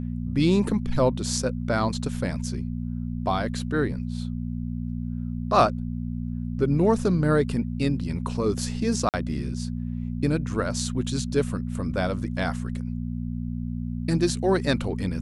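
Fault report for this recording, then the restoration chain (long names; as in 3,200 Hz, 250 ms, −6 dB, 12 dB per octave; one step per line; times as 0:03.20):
mains hum 60 Hz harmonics 4 −30 dBFS
0:09.09–0:09.14: drop-out 48 ms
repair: hum removal 60 Hz, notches 4
repair the gap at 0:09.09, 48 ms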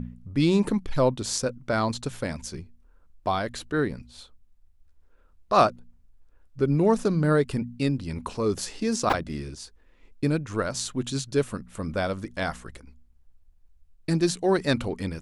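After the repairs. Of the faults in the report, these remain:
none of them is left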